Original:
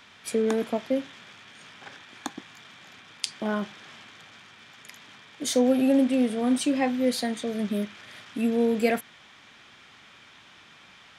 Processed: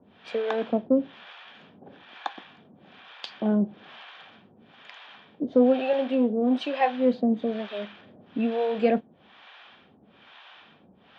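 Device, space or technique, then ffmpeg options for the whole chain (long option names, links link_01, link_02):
guitar amplifier with harmonic tremolo: -filter_complex "[0:a]acrossover=split=560[link_01][link_02];[link_01]aeval=exprs='val(0)*(1-1/2+1/2*cos(2*PI*1.1*n/s))':channel_layout=same[link_03];[link_02]aeval=exprs='val(0)*(1-1/2-1/2*cos(2*PI*1.1*n/s))':channel_layout=same[link_04];[link_03][link_04]amix=inputs=2:normalize=0,asoftclip=type=tanh:threshold=-17.5dB,highpass=84,equalizer=frequency=120:width_type=q:width=4:gain=-9,equalizer=frequency=210:width_type=q:width=4:gain=3,equalizer=frequency=510:width_type=q:width=4:gain=3,equalizer=frequency=740:width_type=q:width=4:gain=4,equalizer=frequency=1300:width_type=q:width=4:gain=-3,equalizer=frequency=2100:width_type=q:width=4:gain=-8,lowpass=frequency=3400:width=0.5412,lowpass=frequency=3400:width=1.3066,asettb=1/sr,asplit=3[link_05][link_06][link_07];[link_05]atrim=end=5.934[link_08];[link_06]atrim=start=5.93:end=6.81,asetpts=PTS-STARTPTS,afade=type=in:duration=0.004:curve=qsin,afade=type=out:start_time=0.876:duration=0.004:curve=qsin,highpass=270[link_09];[link_07]atrim=start=6.806[link_10];[link_08][link_09]acrossfade=duration=0.004:curve1=hsin:curve2=qsin[link_11];[link_11][link_10]acrossfade=duration=0.004:curve1=qsin:curve2=hsin,volume=6.5dB"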